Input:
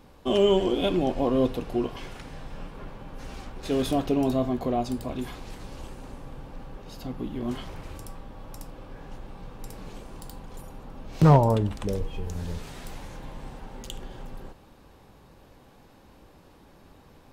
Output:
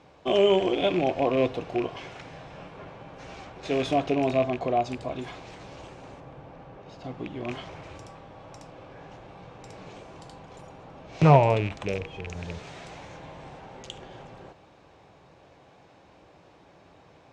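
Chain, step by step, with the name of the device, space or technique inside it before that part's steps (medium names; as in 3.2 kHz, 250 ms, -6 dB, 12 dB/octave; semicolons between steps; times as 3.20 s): car door speaker with a rattle (rattle on loud lows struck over -29 dBFS, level -26 dBFS; cabinet simulation 100–6800 Hz, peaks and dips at 230 Hz -9 dB, 670 Hz +6 dB, 2.3 kHz +4 dB, 4.7 kHz -3 dB); 6.20–7.04 s: treble shelf 3 kHz -8.5 dB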